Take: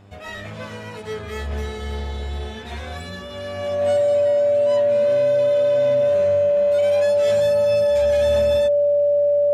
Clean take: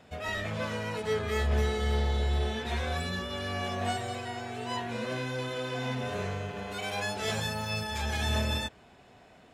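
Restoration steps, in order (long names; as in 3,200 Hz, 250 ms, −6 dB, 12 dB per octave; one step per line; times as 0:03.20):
hum removal 100.1 Hz, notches 13
notch filter 580 Hz, Q 30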